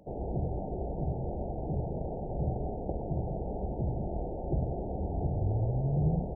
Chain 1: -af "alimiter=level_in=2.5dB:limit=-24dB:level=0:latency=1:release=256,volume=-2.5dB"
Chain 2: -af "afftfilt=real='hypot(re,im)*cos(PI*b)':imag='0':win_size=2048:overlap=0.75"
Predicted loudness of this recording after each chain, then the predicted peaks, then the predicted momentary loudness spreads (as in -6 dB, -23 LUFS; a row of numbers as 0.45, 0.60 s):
-37.0, -37.5 LUFS; -26.5, -19.0 dBFS; 3, 6 LU